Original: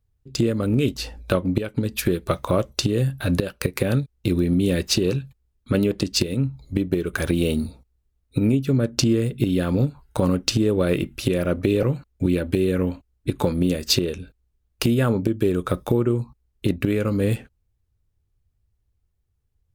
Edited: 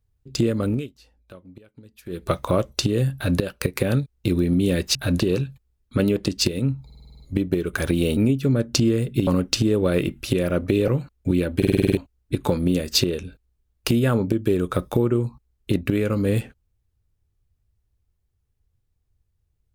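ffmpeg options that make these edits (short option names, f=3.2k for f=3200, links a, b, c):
-filter_complex "[0:a]asplit=22[a][b][c][d][e][f][g][h][i][j][k][l][m][n][o][p][q][r][s][t][u][v];[a]atrim=end=0.88,asetpts=PTS-STARTPTS,afade=t=out:st=0.67:d=0.21:silence=0.0707946[w];[b]atrim=start=0.88:end=2.06,asetpts=PTS-STARTPTS,volume=-23dB[x];[c]atrim=start=2.06:end=4.952,asetpts=PTS-STARTPTS,afade=t=in:d=0.21:silence=0.0707946[y];[d]atrim=start=3.138:end=3.392[z];[e]atrim=start=4.948:end=6.652[aa];[f]atrim=start=6.598:end=6.652[ab];[g]atrim=start=6.598:end=6.652[ac];[h]atrim=start=6.598:end=6.652[ad];[i]atrim=start=6.598:end=6.652[ae];[j]atrim=start=6.598:end=6.652[af];[k]atrim=start=6.598:end=6.652[ag];[l]atrim=start=6.598:end=7.572[ah];[m]atrim=start=8.408:end=9.512[ai];[n]atrim=start=10.218:end=12.572[aj];[o]atrim=start=12.518:end=12.572[ak];[p]atrim=start=12.518:end=12.572[al];[q]atrim=start=12.518:end=12.572[am];[r]atrim=start=12.518:end=12.572[an];[s]atrim=start=12.518:end=12.572[ao];[t]atrim=start=12.518:end=12.572[ap];[u]atrim=start=12.518:end=12.572[aq];[v]atrim=start=12.918[ar];[w][x][y]concat=n=3:v=0:a=1[as];[as][z]acrossfade=d=0.004:c1=hsin:c2=hsin[at];[at][aa]acrossfade=d=0.004:c1=hsin:c2=hsin[au];[au][ab]acrossfade=d=0.004:c1=hsin:c2=hsin[av];[av][ac]acrossfade=d=0.004:c1=hsin:c2=hsin[aw];[aw][ad]acrossfade=d=0.004:c1=hsin:c2=hsin[ax];[ax][ae]acrossfade=d=0.004:c1=hsin:c2=hsin[ay];[ay][af]acrossfade=d=0.004:c1=hsin:c2=hsin[az];[az][ag]acrossfade=d=0.004:c1=hsin:c2=hsin[ba];[ba][ah]acrossfade=d=0.004:c1=hsin:c2=hsin[bb];[bb][ai]acrossfade=d=0.004:c1=hsin:c2=hsin[bc];[bc][aj]acrossfade=d=0.004:c1=hsin:c2=hsin[bd];[bd][ak]acrossfade=d=0.004:c1=hsin:c2=hsin[be];[be][al]acrossfade=d=0.004:c1=hsin:c2=hsin[bf];[bf][am]acrossfade=d=0.004:c1=hsin:c2=hsin[bg];[bg][an]acrossfade=d=0.004:c1=hsin:c2=hsin[bh];[bh][ao]acrossfade=d=0.004:c1=hsin:c2=hsin[bi];[bi][ap]acrossfade=d=0.004:c1=hsin:c2=hsin[bj];[bj][aq]acrossfade=d=0.004:c1=hsin:c2=hsin[bk];[bk][ar]acrossfade=d=0.004:c1=hsin:c2=hsin"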